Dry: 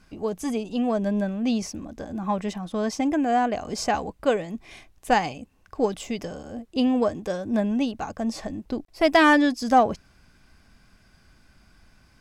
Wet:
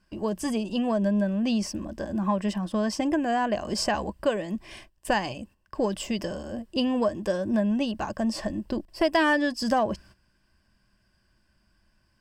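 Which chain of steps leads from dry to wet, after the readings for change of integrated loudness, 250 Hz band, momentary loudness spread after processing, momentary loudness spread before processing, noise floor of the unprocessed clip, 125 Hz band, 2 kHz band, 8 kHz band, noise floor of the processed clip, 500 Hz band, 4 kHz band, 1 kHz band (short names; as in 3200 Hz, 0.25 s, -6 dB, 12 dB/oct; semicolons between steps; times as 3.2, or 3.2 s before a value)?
-2.5 dB, -1.5 dB, 9 LU, 15 LU, -59 dBFS, +1.5 dB, -3.5 dB, -0.5 dB, -68 dBFS, -2.0 dB, 0.0 dB, -5.0 dB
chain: gate -49 dBFS, range -13 dB; ripple EQ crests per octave 1.3, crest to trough 8 dB; compressor 2.5:1, threshold -24 dBFS, peak gain reduction 8.5 dB; gain +1.5 dB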